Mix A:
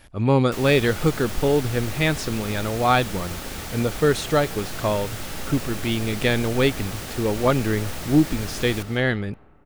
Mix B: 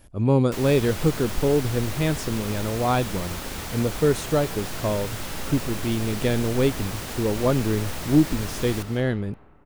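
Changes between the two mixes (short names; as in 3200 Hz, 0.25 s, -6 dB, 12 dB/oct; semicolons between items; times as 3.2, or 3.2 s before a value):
speech: add graphic EQ 1000/2000/4000 Hz -6/-8/-7 dB; master: remove notch 1000 Hz, Q 11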